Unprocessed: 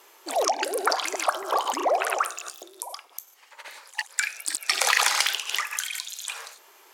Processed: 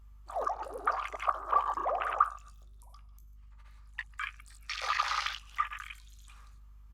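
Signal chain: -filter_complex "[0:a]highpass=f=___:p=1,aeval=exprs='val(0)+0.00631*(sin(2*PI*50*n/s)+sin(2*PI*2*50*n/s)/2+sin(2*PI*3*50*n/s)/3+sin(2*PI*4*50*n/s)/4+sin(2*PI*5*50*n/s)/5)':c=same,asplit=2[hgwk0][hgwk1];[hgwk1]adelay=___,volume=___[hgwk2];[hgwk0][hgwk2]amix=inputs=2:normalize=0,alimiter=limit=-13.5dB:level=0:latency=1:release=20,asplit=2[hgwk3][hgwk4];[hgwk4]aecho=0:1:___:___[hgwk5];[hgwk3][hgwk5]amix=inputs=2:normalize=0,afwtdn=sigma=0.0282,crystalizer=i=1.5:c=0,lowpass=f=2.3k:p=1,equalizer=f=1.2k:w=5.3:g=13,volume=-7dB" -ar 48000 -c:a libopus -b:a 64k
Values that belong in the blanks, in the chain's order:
790, 17, -11dB, 146, 0.1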